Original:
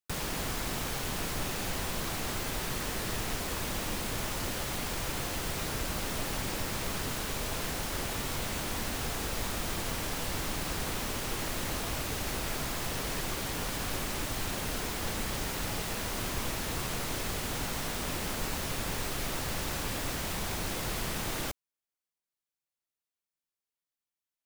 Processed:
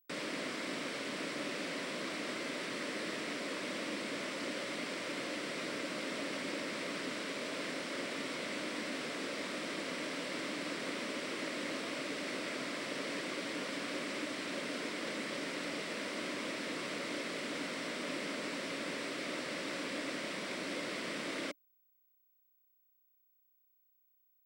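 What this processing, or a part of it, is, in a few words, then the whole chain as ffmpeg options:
old television with a line whistle: -af "highpass=frequency=200:width=0.5412,highpass=frequency=200:width=1.3066,equalizer=frequency=290:width_type=q:width=4:gain=7,equalizer=frequency=570:width_type=q:width=4:gain=7,equalizer=frequency=810:width_type=q:width=4:gain=-10,equalizer=frequency=2100:width_type=q:width=4:gain=6,equalizer=frequency=6600:width_type=q:width=4:gain=-9,lowpass=frequency=7800:width=0.5412,lowpass=frequency=7800:width=1.3066,aeval=exprs='val(0)+0.000501*sin(2*PI*15734*n/s)':channel_layout=same,volume=-4dB"

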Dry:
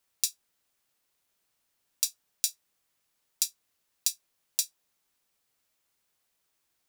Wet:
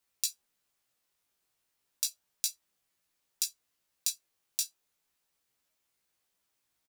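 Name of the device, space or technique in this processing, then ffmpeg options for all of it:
double-tracked vocal: -filter_complex "[0:a]asplit=2[link_01][link_02];[link_02]adelay=16,volume=-13dB[link_03];[link_01][link_03]amix=inputs=2:normalize=0,flanger=delay=15.5:depth=3.1:speed=0.33"

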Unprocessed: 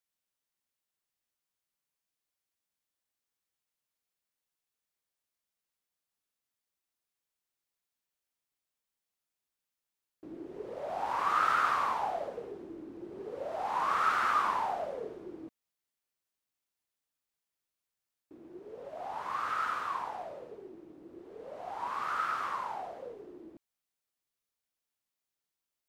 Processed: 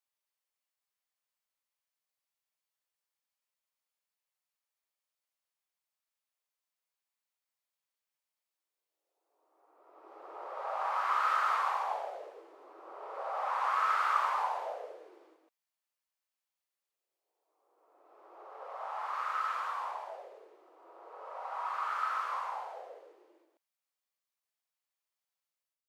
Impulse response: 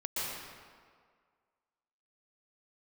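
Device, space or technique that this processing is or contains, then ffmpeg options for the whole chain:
ghost voice: -filter_complex "[0:a]areverse[link_01];[1:a]atrim=start_sample=2205[link_02];[link_01][link_02]afir=irnorm=-1:irlink=0,areverse,highpass=frequency=530:width=0.5412,highpass=frequency=530:width=1.3066,volume=-6.5dB"

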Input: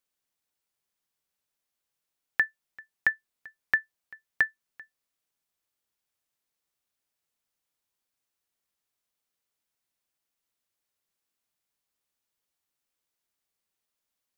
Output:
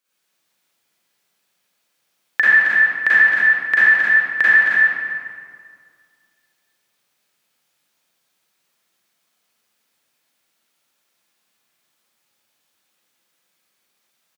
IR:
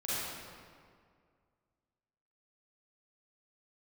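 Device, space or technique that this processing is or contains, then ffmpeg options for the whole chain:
stadium PA: -filter_complex "[0:a]highpass=frequency=130:width=0.5412,highpass=frequency=130:width=1.3066,equalizer=frequency=2700:width_type=o:width=2.1:gain=3.5,aecho=1:1:218.7|268.2:0.355|0.501[link_01];[1:a]atrim=start_sample=2205[link_02];[link_01][link_02]afir=irnorm=-1:irlink=0,volume=8.5dB"

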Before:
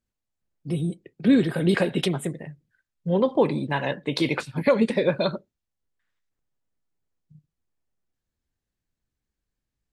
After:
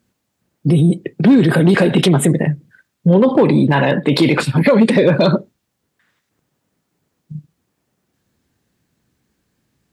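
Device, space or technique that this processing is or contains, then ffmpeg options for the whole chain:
mastering chain: -filter_complex "[0:a]equalizer=frequency=560:width_type=o:width=2:gain=-3.5,acompressor=threshold=-22dB:ratio=3,asoftclip=type=tanh:threshold=-14dB,tiltshelf=frequency=1200:gain=4,asoftclip=type=hard:threshold=-16.5dB,alimiter=level_in=25dB:limit=-1dB:release=50:level=0:latency=1,highpass=140,asettb=1/sr,asplit=3[link_01][link_02][link_03];[link_01]atrim=end=3.134[link_04];[link_02]atrim=start=3.13:end=4.9,asetpts=PTS-STARTPTS,afade=type=in:duration=0.004:curve=qsin,afade=type=out:start_time=1.766:duration=0.004:curve=qsin,bandreject=frequency=6100:width=5.4[link_05];[link_03]atrim=start=4.896[link_06];[link_04][link_05]acrossfade=duration=0.004:curve1=hsin:curve2=qsin[link_07];[link_07][link_06]acrossfade=duration=0.004:curve1=qsin:curve2=hsin,volume=-3.5dB"

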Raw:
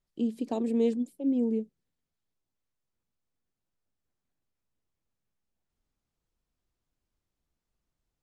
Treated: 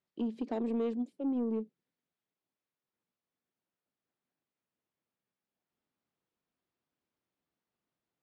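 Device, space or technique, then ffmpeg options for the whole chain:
AM radio: -af "highpass=190,lowpass=3600,acompressor=threshold=-27dB:ratio=4,asoftclip=type=tanh:threshold=-26dB"

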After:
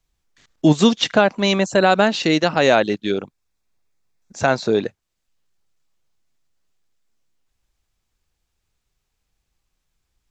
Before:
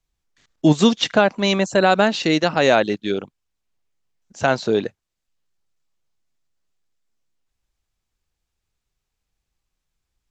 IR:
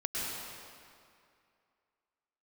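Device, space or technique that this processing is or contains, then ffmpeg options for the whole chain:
parallel compression: -filter_complex "[0:a]asplit=2[link_01][link_02];[link_02]acompressor=threshold=-32dB:ratio=6,volume=-3.5dB[link_03];[link_01][link_03]amix=inputs=2:normalize=0,asettb=1/sr,asplit=3[link_04][link_05][link_06];[link_04]atrim=end=3.144[link_07];[link_05]atrim=start=3.14:end=4.83,asetpts=PTS-STARTPTS,afade=type=in:duration=0.004:curve=qsin,afade=type=out:start_time=1.686:duration=0.004:curve=qsin,bandreject=frequency=3000:width=7.3[link_08];[link_06]atrim=start=4.826[link_09];[link_07][link_08]acrossfade=duration=0.004:curve1=hsin:curve2=qsin[link_10];[link_10][link_09]acrossfade=duration=0.004:curve1=qsin:curve2=hsin"

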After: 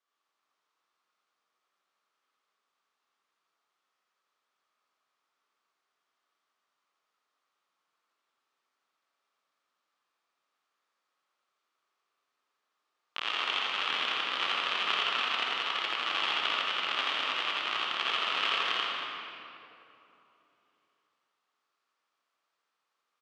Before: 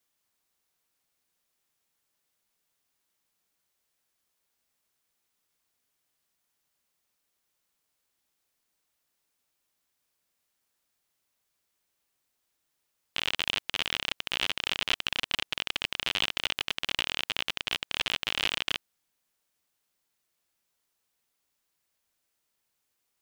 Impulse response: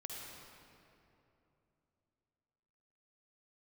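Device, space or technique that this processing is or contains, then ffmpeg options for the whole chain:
station announcement: -filter_complex "[0:a]highpass=320,lowpass=4500,equalizer=frequency=1200:width_type=o:width=0.51:gain=11.5,aecho=1:1:84.55|279.9:0.794|0.282[link_01];[1:a]atrim=start_sample=2205[link_02];[link_01][link_02]afir=irnorm=-1:irlink=0"

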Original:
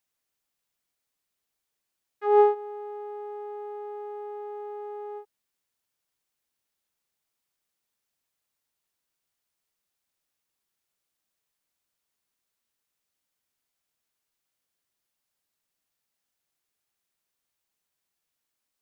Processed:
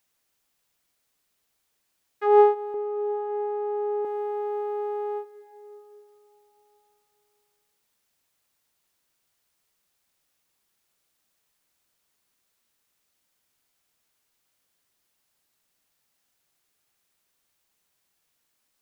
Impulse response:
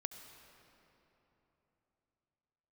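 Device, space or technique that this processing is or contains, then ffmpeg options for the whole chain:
ducked reverb: -filter_complex "[0:a]asettb=1/sr,asplit=3[link_01][link_02][link_03];[link_01]atrim=end=2.744[link_04];[link_02]atrim=start=2.74:end=4.05,asetpts=PTS-STARTPTS,afade=type=in:duration=0.004:curve=qsin,afade=type=out:start_time=1.306:duration=0.004:curve=qsin,aemphasis=mode=reproduction:type=riaa[link_05];[link_03]atrim=start=4.046[link_06];[link_04][link_05]acrossfade=duration=0.004:curve1=hsin:curve2=qsin[link_07];[link_07][link_06]acrossfade=duration=0.004:curve1=qsin:curve2=hsin,asplit=3[link_08][link_09][link_10];[1:a]atrim=start_sample=2205[link_11];[link_09][link_11]afir=irnorm=-1:irlink=0[link_12];[link_10]apad=whole_len=829546[link_13];[link_12][link_13]sidechaincompress=threshold=-34dB:ratio=8:attack=5.6:release=577,volume=4dB[link_14];[link_08][link_14]amix=inputs=2:normalize=0,volume=1.5dB"

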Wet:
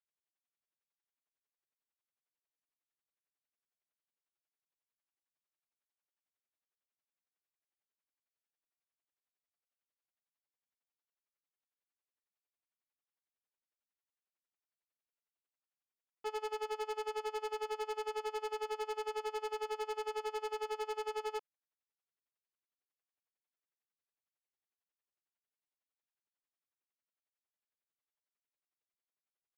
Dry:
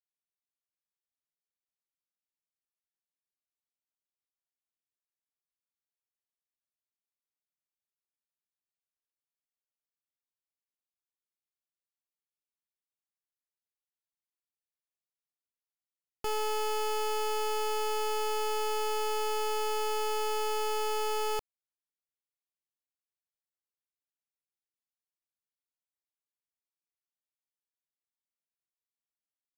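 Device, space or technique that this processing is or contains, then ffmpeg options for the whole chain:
helicopter radio: -af "highpass=320,lowpass=2700,aeval=exprs='val(0)*pow(10,-29*(0.5-0.5*cos(2*PI*11*n/s))/20)':channel_layout=same,asoftclip=type=hard:threshold=-39dB,volume=6dB"

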